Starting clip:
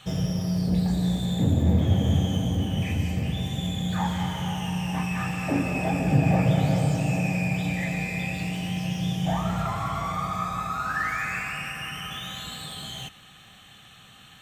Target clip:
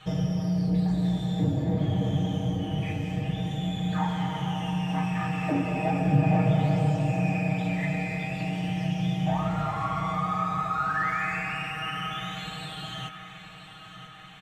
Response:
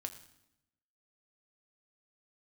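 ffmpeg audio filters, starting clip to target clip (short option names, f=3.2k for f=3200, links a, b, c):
-filter_complex "[0:a]lowpass=f=1.9k:p=1,asplit=2[a][b];[b]acompressor=threshold=-30dB:ratio=6,volume=-2.5dB[c];[a][c]amix=inputs=2:normalize=0,equalizer=f=150:w=0.32:g=-3,aecho=1:1:6.4:0.86,aecho=1:1:985|1970|2955|3940|4925:0.224|0.114|0.0582|0.0297|0.0151,volume=-4dB"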